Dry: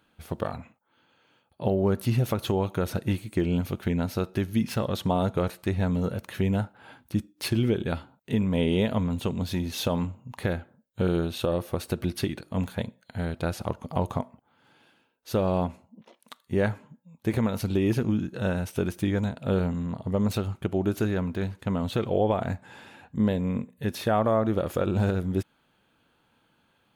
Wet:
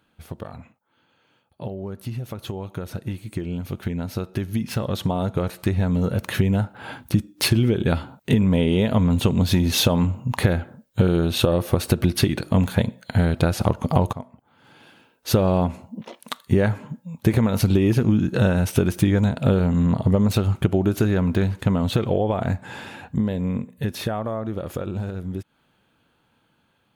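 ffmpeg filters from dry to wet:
-filter_complex "[0:a]asplit=2[s0][s1];[s0]atrim=end=14.13,asetpts=PTS-STARTPTS,afade=t=out:st=14.126:d=0.004:c=hsin:silence=0.0707946[s2];[s1]atrim=start=14.13,asetpts=PTS-STARTPTS,afade=t=in:d=1.27:silence=0.0707946[s3];[s2][s3]concat=n=2:v=0:a=1,acompressor=threshold=0.0282:ratio=6,equalizer=f=110:w=0.75:g=3,dynaudnorm=f=810:g=13:m=5.96"

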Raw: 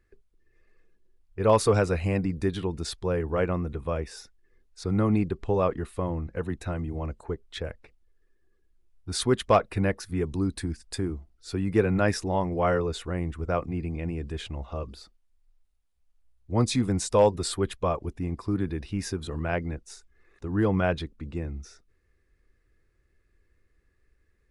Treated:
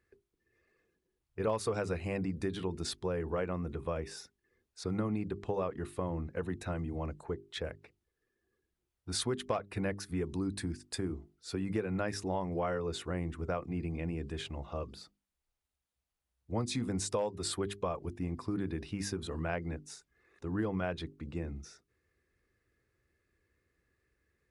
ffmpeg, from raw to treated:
-filter_complex "[0:a]asplit=3[s0][s1][s2];[s0]atrim=end=1.472[s3];[s1]atrim=start=1.468:end=1.972,asetpts=PTS-STARTPTS,volume=1.68[s4];[s2]atrim=start=1.968[s5];[s3][s4]acrossfade=d=0.004:c1=hsin:c2=hsin[s6];[s6][s5]acrossfade=d=0.004:c1=hsin:c2=hsin,highpass=83,bandreject=f=50:t=h:w=6,bandreject=f=100:t=h:w=6,bandreject=f=150:t=h:w=6,bandreject=f=200:t=h:w=6,bandreject=f=250:t=h:w=6,bandreject=f=300:t=h:w=6,bandreject=f=350:t=h:w=6,bandreject=f=400:t=h:w=6,acompressor=threshold=0.0447:ratio=6,volume=0.708"

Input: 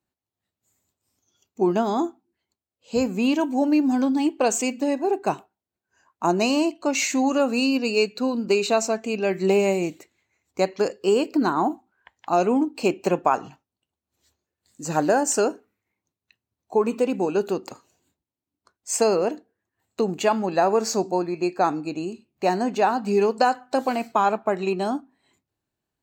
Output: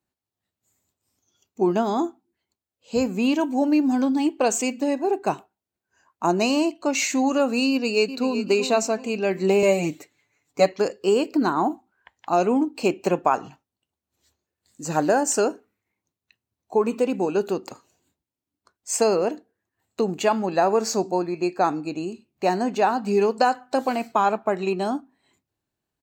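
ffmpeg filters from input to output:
-filter_complex "[0:a]asplit=2[s0][s1];[s1]afade=t=in:st=7.7:d=0.01,afade=t=out:st=8.45:d=0.01,aecho=0:1:380|760|1140|1520:0.281838|0.112735|0.0450941|0.0180377[s2];[s0][s2]amix=inputs=2:normalize=0,asettb=1/sr,asplit=3[s3][s4][s5];[s3]atrim=end=9.624[s6];[s4]atrim=start=9.62:end=10.72,asetpts=PTS-STARTPTS,afade=t=in:d=0.004:c=qsin,afade=t=out:st=1.096:d=0.004:c=qsin,aecho=1:1:6.9:0.99,atrim=end_sample=48510[s7];[s5]atrim=start=10.716[s8];[s6][s7]acrossfade=d=0.004:c1=hsin:c2=qsin[s9];[s9][s8]acrossfade=d=0.004:c1=qsin:c2=hsin"

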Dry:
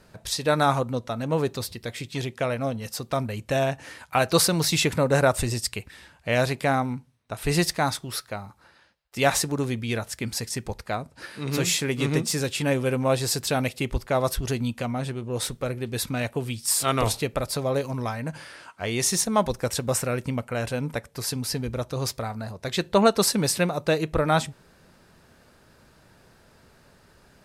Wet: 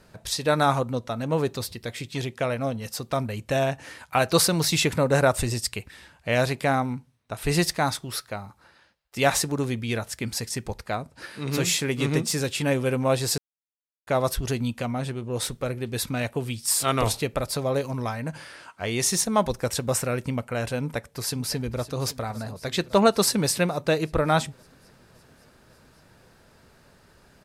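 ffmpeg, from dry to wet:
-filter_complex "[0:a]asplit=2[s0][s1];[s1]afade=t=in:st=20.82:d=0.01,afade=t=out:st=21.94:d=0.01,aecho=0:1:560|1120|1680|2240|2800|3360|3920|4480:0.158489|0.110943|0.0776598|0.0543618|0.0380533|0.0266373|0.0186461|0.0130523[s2];[s0][s2]amix=inputs=2:normalize=0,asplit=3[s3][s4][s5];[s3]atrim=end=13.38,asetpts=PTS-STARTPTS,afade=t=out:st=13.376:d=0.004:c=hsin[s6];[s4]atrim=start=13.38:end=14.07,asetpts=PTS-STARTPTS,volume=0[s7];[s5]atrim=start=14.07,asetpts=PTS-STARTPTS,afade=t=in:d=0.004:c=hsin[s8];[s6][s7][s8]concat=n=3:v=0:a=1"

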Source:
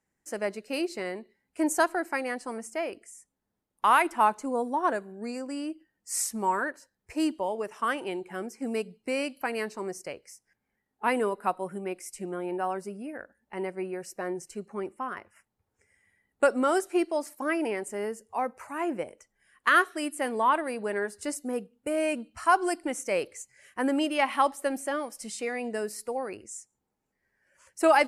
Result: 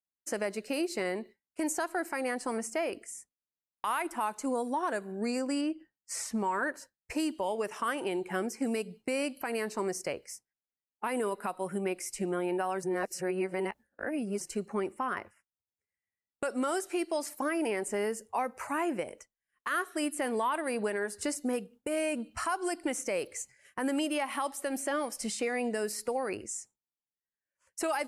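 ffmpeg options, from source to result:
-filter_complex "[0:a]asettb=1/sr,asplit=3[s0][s1][s2];[s0]atrim=end=5.614[s3];[s1]atrim=start=5.61:end=6.63,asetpts=PTS-STARTPTS,afade=t=in:d=0.004:c=qsin,afade=t=out:st=1.016:d=0.004:c=qsin,aemphasis=mode=reproduction:type=50kf[s4];[s2]atrim=start=6.626[s5];[s3][s4]acrossfade=d=0.004:c1=hsin:c2=qsin[s6];[s6][s5]acrossfade=d=0.004:c1=qsin:c2=hsin,asplit=3[s7][s8][s9];[s7]atrim=end=12.832[s10];[s8]atrim=start=12.828:end=14.412,asetpts=PTS-STARTPTS,areverse[s11];[s9]atrim=start=14.408[s12];[s10][s11]acrossfade=d=0.004:c1=hsin:c2=hsin[s13];[s13][s12]acrossfade=d=0.004:c1=hsin:c2=hsin,agate=range=0.0224:threshold=0.00447:ratio=3:detection=peak,acrossover=split=1800|6800[s14][s15][s16];[s14]acompressor=threshold=0.0178:ratio=4[s17];[s15]acompressor=threshold=0.00501:ratio=4[s18];[s16]acompressor=threshold=0.00447:ratio=4[s19];[s17][s18][s19]amix=inputs=3:normalize=0,alimiter=level_in=1.58:limit=0.0631:level=0:latency=1:release=75,volume=0.631,volume=2"

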